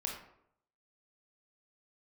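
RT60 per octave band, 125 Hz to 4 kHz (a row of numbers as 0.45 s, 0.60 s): 0.80 s, 0.70 s, 0.75 s, 0.70 s, 0.55 s, 0.40 s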